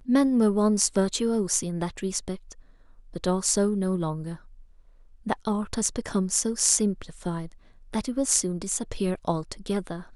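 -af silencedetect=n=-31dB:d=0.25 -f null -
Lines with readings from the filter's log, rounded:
silence_start: 2.52
silence_end: 3.16 | silence_duration: 0.64
silence_start: 4.35
silence_end: 5.27 | silence_duration: 0.92
silence_start: 7.46
silence_end: 7.93 | silence_duration: 0.47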